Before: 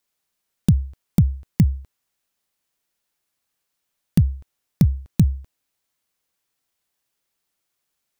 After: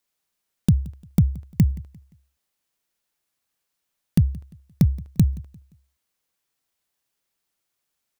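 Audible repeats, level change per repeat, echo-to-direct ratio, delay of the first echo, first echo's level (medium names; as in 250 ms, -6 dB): 2, -9.0 dB, -21.5 dB, 174 ms, -22.0 dB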